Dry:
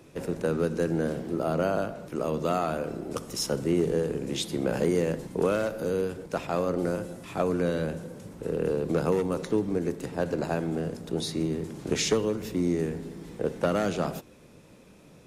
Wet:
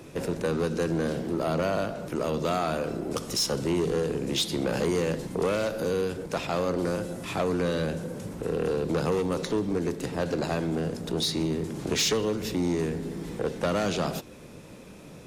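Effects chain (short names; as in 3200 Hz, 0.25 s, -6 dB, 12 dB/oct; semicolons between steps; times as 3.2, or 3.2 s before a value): dynamic EQ 4200 Hz, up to +7 dB, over -51 dBFS, Q 0.92; in parallel at +2 dB: compressor, threshold -37 dBFS, peak gain reduction 16.5 dB; on the sum: soft clip -19.5 dBFS, distortion -14 dB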